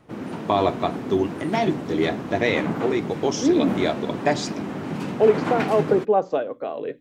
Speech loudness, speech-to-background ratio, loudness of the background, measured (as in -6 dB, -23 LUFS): -23.5 LUFS, 6.0 dB, -29.5 LUFS